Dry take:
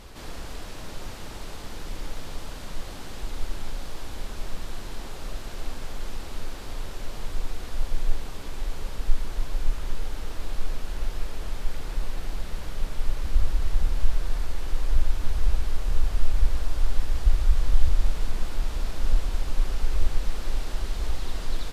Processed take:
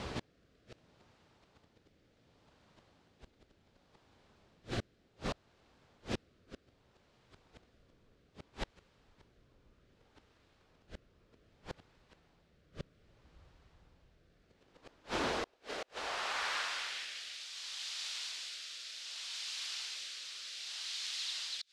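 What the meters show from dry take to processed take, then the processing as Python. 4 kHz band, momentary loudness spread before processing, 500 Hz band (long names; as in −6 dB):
+1.0 dB, 11 LU, −6.0 dB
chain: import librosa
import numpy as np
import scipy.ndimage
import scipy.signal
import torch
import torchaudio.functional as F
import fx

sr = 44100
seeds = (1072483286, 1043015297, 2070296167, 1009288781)

y = fx.hum_notches(x, sr, base_hz=50, count=7)
y = fx.filter_sweep_highpass(y, sr, from_hz=100.0, to_hz=3900.0, start_s=14.25, end_s=17.48, q=0.99)
y = fx.gate_flip(y, sr, shuts_db=-32.0, range_db=-35)
y = fx.rotary(y, sr, hz=0.65)
y = fx.air_absorb(y, sr, metres=97.0)
y = y * 10.0 ** (11.0 / 20.0)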